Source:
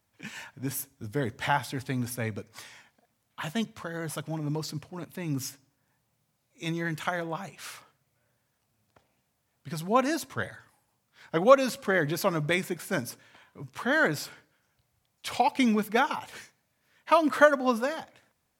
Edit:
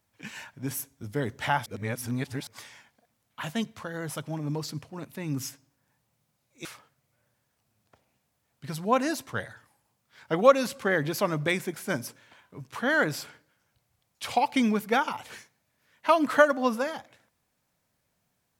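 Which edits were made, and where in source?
1.66–2.47 s: reverse
6.65–7.68 s: delete

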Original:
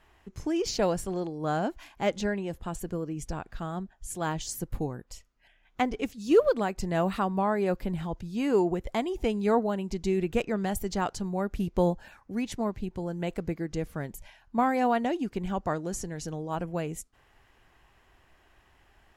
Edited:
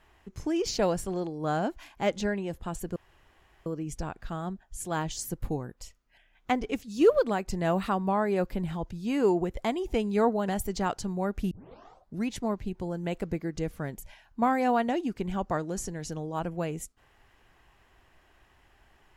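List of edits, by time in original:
2.96 s: insert room tone 0.70 s
9.78–10.64 s: delete
11.67 s: tape start 0.75 s

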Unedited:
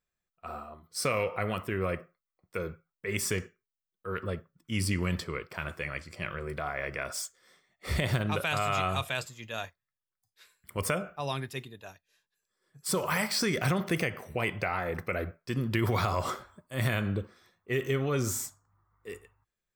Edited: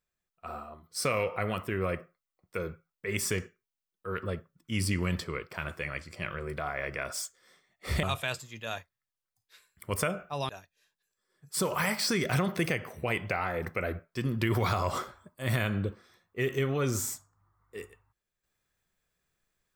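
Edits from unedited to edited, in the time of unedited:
8.03–8.90 s: delete
11.36–11.81 s: delete

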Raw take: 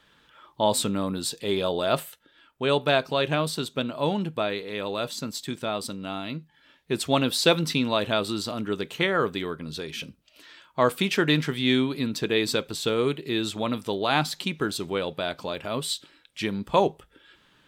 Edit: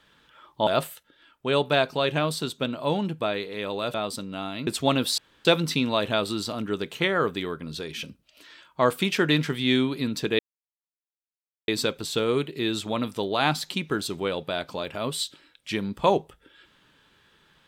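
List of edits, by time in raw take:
0.67–1.83 s: delete
5.10–5.65 s: delete
6.38–6.93 s: delete
7.44 s: insert room tone 0.27 s
12.38 s: insert silence 1.29 s

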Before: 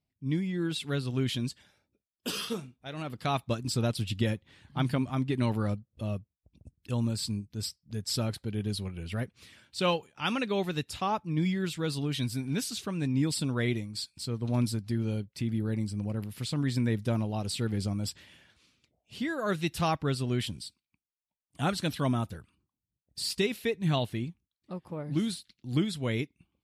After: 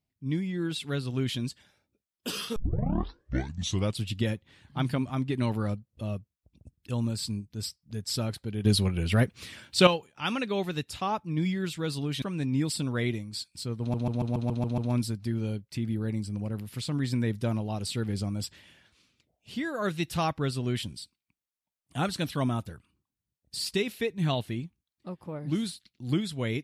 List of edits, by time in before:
2.56 s: tape start 1.47 s
8.65–9.87 s: gain +10 dB
12.22–12.84 s: delete
14.42 s: stutter 0.14 s, 8 plays

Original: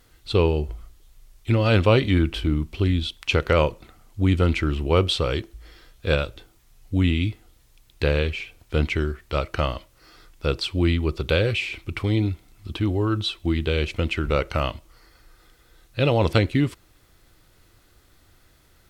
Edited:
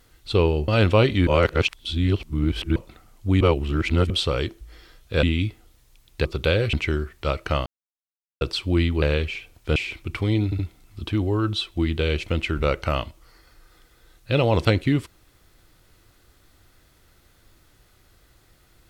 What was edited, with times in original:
0.68–1.61 s: delete
2.20–3.69 s: reverse
4.34–5.03 s: reverse
6.16–7.05 s: delete
8.07–8.81 s: swap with 11.10–11.58 s
9.74–10.49 s: mute
12.27 s: stutter 0.07 s, 3 plays

